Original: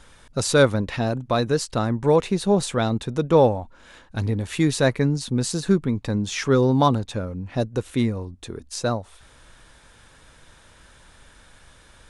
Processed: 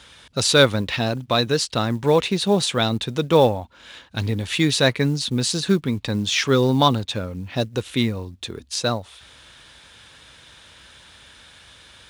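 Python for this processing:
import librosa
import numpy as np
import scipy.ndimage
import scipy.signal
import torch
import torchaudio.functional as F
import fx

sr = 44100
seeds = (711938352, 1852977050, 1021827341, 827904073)

y = scipy.signal.sosfilt(scipy.signal.butter(4, 54.0, 'highpass', fs=sr, output='sos'), x)
y = fx.peak_eq(y, sr, hz=3400.0, db=11.0, octaves=1.5)
y = fx.quant_float(y, sr, bits=4)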